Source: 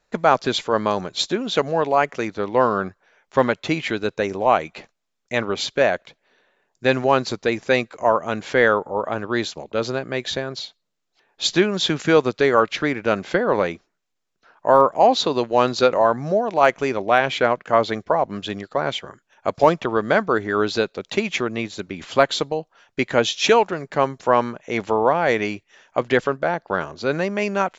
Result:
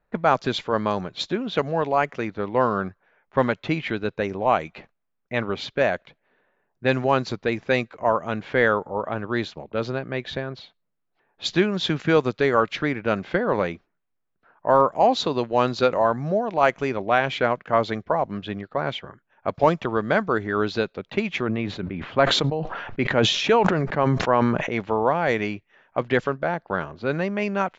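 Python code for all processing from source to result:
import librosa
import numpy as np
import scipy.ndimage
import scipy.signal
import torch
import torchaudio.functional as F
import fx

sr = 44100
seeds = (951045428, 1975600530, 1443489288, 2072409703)

y = fx.chain(x, sr, fx.lowpass(hz=2500.0, slope=6),
    fx.sustainer(db_per_s=35.0), at=(21.42, 24.72))
y = fx.low_shelf(y, sr, hz=410.0, db=-4.0)
y = fx.env_lowpass(y, sr, base_hz=1800.0, full_db=-13.0)
y = fx.bass_treble(y, sr, bass_db=8, treble_db=-4)
y = y * librosa.db_to_amplitude(-2.5)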